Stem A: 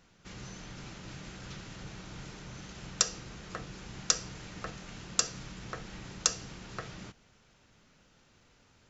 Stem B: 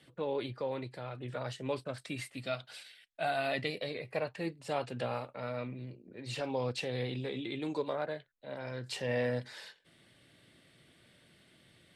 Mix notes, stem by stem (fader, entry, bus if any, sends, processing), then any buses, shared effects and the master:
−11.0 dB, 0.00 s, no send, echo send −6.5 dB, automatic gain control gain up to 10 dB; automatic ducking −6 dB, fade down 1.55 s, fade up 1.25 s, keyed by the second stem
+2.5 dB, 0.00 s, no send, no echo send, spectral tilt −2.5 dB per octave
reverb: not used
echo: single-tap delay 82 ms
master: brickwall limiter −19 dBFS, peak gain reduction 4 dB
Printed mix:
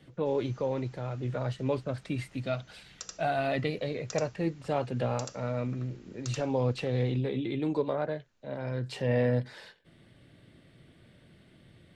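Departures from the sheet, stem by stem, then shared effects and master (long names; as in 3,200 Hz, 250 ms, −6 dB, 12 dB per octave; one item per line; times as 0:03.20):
stem A: missing automatic gain control gain up to 10 dB
master: missing brickwall limiter −19 dBFS, peak gain reduction 4 dB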